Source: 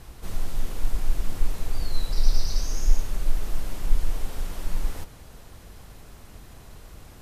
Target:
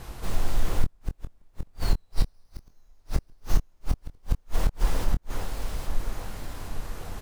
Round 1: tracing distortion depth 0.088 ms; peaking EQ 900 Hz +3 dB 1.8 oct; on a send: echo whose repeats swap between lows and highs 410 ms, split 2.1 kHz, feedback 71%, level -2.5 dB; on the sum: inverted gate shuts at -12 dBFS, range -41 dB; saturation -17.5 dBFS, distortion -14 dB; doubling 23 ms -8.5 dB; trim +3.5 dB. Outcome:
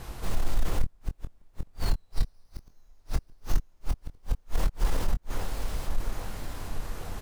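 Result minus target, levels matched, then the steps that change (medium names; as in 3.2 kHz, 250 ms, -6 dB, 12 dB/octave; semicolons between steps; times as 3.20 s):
saturation: distortion +17 dB
change: saturation -7 dBFS, distortion -32 dB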